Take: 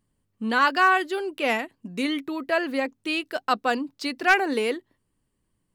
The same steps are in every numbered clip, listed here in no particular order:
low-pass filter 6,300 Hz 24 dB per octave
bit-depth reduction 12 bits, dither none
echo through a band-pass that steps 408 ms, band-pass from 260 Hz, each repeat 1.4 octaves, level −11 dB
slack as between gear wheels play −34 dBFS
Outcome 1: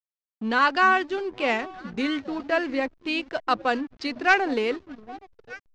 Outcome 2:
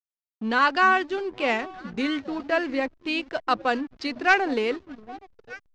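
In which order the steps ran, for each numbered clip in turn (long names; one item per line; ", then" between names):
echo through a band-pass that steps, then slack as between gear wheels, then bit-depth reduction, then low-pass filter
echo through a band-pass that steps, then bit-depth reduction, then slack as between gear wheels, then low-pass filter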